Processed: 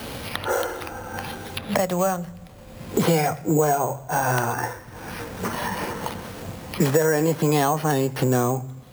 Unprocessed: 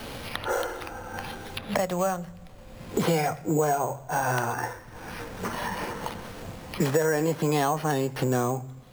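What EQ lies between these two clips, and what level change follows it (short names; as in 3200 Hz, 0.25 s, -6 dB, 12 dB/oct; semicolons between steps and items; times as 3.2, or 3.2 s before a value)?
HPF 48 Hz; low shelf 410 Hz +2.5 dB; high shelf 8400 Hz +5.5 dB; +3.0 dB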